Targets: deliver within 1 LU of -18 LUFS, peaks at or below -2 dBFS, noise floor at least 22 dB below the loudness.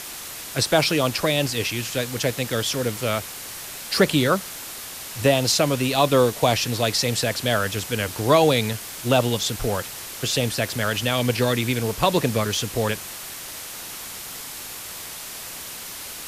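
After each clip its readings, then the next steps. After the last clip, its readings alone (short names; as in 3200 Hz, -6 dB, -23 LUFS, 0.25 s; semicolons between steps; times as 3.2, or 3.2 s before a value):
noise floor -36 dBFS; noise floor target -45 dBFS; loudness -23.0 LUFS; peak -4.0 dBFS; loudness target -18.0 LUFS
-> denoiser 9 dB, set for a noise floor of -36 dBFS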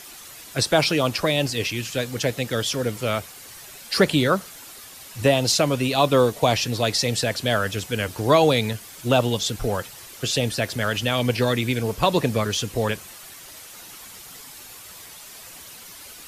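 noise floor -42 dBFS; noise floor target -45 dBFS
-> denoiser 6 dB, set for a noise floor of -42 dBFS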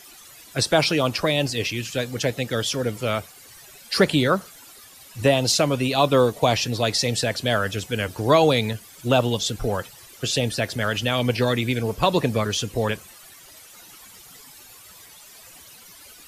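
noise floor -47 dBFS; loudness -22.5 LUFS; peak -4.0 dBFS; loudness target -18.0 LUFS
-> gain +4.5 dB; limiter -2 dBFS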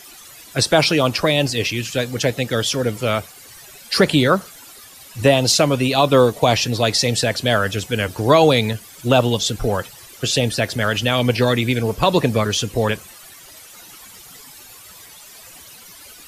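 loudness -18.0 LUFS; peak -2.0 dBFS; noise floor -42 dBFS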